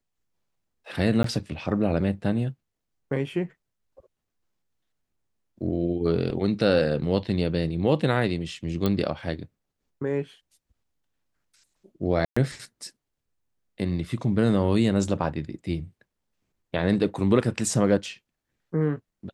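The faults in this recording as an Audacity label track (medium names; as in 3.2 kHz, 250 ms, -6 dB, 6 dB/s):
1.230000	1.240000	dropout 13 ms
8.860000	8.860000	pop -12 dBFS
12.250000	12.370000	dropout 115 ms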